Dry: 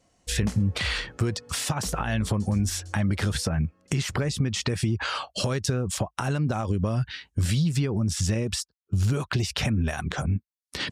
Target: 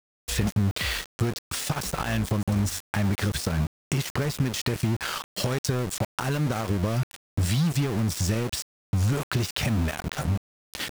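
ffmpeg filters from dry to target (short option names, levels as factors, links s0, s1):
-af "aeval=exprs='val(0)*gte(abs(val(0)),0.0376)':c=same"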